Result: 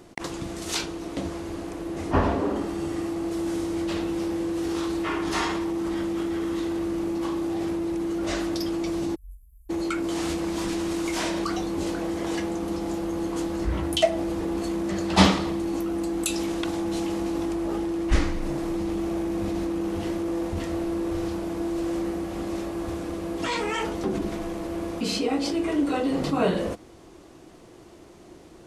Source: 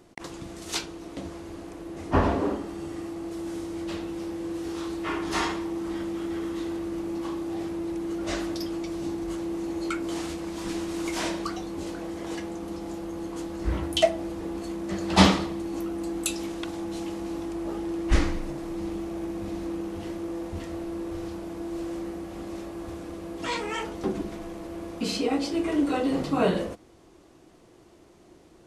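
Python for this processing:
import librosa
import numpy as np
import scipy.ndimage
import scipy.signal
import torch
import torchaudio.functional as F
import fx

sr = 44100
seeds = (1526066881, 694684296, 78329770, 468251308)

p1 = fx.cheby2_bandstop(x, sr, low_hz=250.0, high_hz=3800.0, order=4, stop_db=80, at=(9.14, 9.69), fade=0.02)
p2 = fx.over_compress(p1, sr, threshold_db=-33.0, ratio=-0.5)
y = p1 + (p2 * 10.0 ** (-3.0 / 20.0))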